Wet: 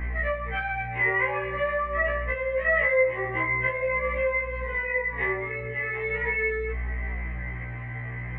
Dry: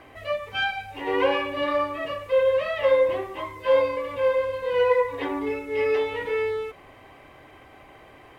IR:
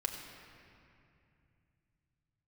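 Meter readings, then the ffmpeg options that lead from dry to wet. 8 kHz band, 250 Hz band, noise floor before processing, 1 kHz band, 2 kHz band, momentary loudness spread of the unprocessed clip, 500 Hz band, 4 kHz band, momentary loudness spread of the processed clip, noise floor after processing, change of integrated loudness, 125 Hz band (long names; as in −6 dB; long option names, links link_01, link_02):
can't be measured, −6.5 dB, −50 dBFS, −2.5 dB, +6.5 dB, 9 LU, −6.0 dB, below −10 dB, 10 LU, −34 dBFS, −2.0 dB, +13.0 dB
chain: -filter_complex "[0:a]aeval=exprs='val(0)+0.02*(sin(2*PI*60*n/s)+sin(2*PI*2*60*n/s)/2+sin(2*PI*3*60*n/s)/3+sin(2*PI*4*60*n/s)/4+sin(2*PI*5*60*n/s)/5)':channel_layout=same,acompressor=threshold=-30dB:ratio=6,flanger=delay=20:depth=4.4:speed=0.44,lowpass=frequency=2000:width_type=q:width=11,aemphasis=mode=reproduction:type=75fm,asplit=2[link_01][link_02];[1:a]atrim=start_sample=2205,highshelf=frequency=2100:gain=-2.5[link_03];[link_02][link_03]afir=irnorm=-1:irlink=0,volume=-12.5dB[link_04];[link_01][link_04]amix=inputs=2:normalize=0,afftfilt=real='re*1.73*eq(mod(b,3),0)':imag='im*1.73*eq(mod(b,3),0)':win_size=2048:overlap=0.75,volume=5.5dB"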